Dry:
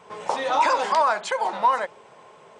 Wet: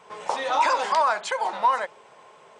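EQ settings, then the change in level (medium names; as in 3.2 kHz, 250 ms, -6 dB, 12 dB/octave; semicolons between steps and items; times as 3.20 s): bass shelf 410 Hz -7 dB; 0.0 dB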